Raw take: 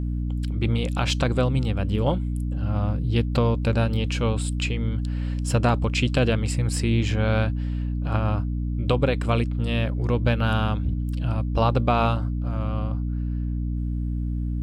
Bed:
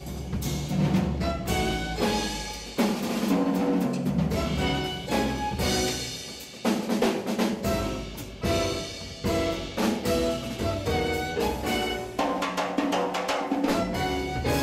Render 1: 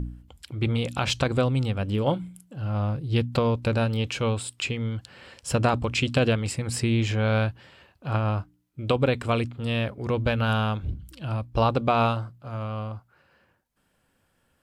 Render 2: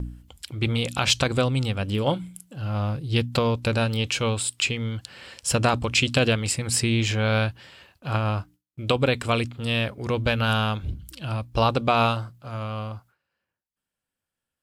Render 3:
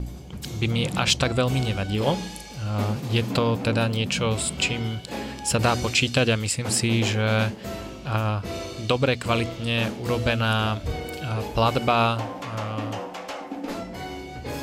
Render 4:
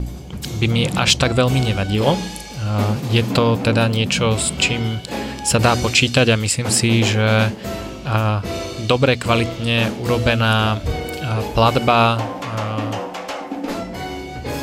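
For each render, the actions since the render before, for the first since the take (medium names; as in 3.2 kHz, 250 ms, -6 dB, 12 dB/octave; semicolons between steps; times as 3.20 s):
de-hum 60 Hz, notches 5
gate with hold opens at -47 dBFS; treble shelf 2.2 kHz +9 dB
add bed -7 dB
trim +6.5 dB; peak limiter -1 dBFS, peak gain reduction 2 dB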